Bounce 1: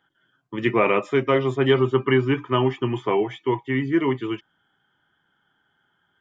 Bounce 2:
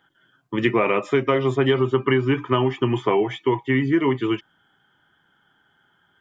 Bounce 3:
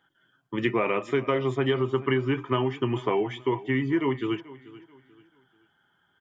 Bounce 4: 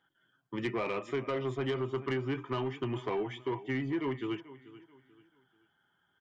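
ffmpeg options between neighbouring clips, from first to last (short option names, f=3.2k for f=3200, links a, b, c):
-af "acompressor=threshold=-21dB:ratio=5,volume=5.5dB"
-af "aecho=1:1:436|872|1308:0.112|0.037|0.0122,volume=-5.5dB"
-af "asoftclip=type=tanh:threshold=-19.5dB,volume=-6dB"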